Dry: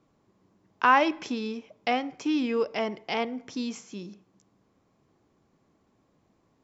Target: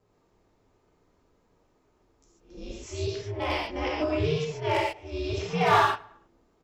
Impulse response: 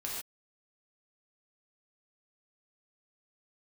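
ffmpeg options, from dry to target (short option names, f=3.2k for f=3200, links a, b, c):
-filter_complex "[0:a]areverse,aeval=exprs='val(0)*sin(2*PI*150*n/s)':c=same,volume=17.5dB,asoftclip=hard,volume=-17.5dB,asplit=2[a][b];[b]adelay=106,lowpass=f=3.9k:p=1,volume=-23.5dB,asplit=2[c][d];[d]adelay=106,lowpass=f=3.9k:p=1,volume=0.49,asplit=2[e][f];[f]adelay=106,lowpass=f=3.9k:p=1,volume=0.49[g];[a][c][e][g]amix=inputs=4:normalize=0[h];[1:a]atrim=start_sample=2205[i];[h][i]afir=irnorm=-1:irlink=0,volume=2.5dB"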